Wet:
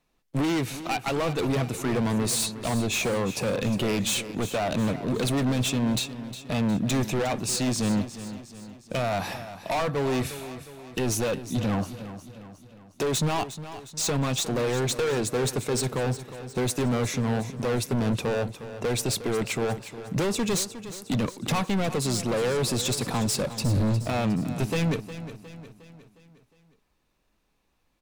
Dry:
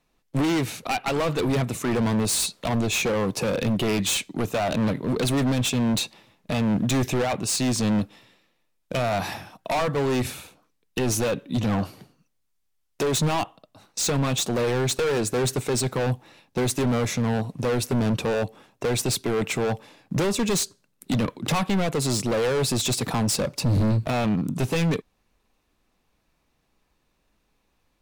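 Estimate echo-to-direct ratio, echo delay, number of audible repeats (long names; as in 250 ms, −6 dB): −11.5 dB, 359 ms, 4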